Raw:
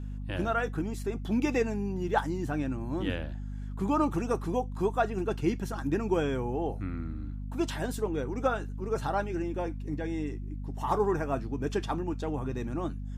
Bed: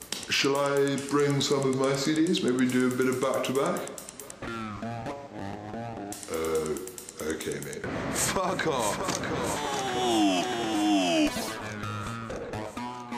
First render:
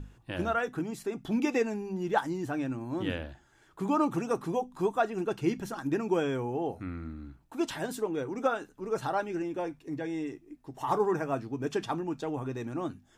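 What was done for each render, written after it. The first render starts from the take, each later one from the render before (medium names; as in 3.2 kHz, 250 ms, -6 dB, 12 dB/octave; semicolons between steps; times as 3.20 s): hum notches 50/100/150/200/250 Hz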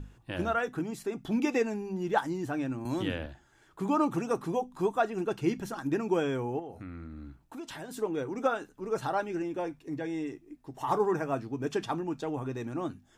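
2.85–3.26 s: three bands compressed up and down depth 70%; 6.59–7.97 s: compression, threshold -38 dBFS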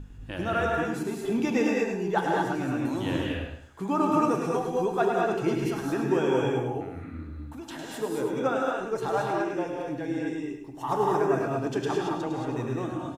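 feedback delay 104 ms, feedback 28%, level -7.5 dB; gated-style reverb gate 250 ms rising, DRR -1.5 dB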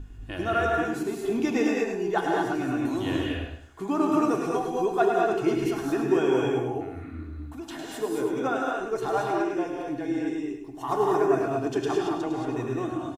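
comb 2.8 ms, depth 46%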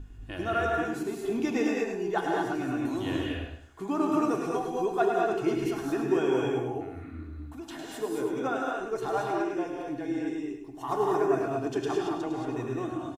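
trim -3 dB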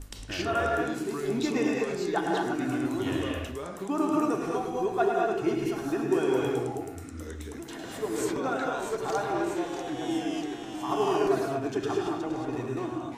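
add bed -11 dB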